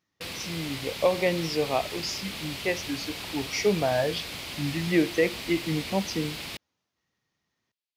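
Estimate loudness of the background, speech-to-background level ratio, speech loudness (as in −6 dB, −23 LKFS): −35.0 LKFS, 6.5 dB, −28.5 LKFS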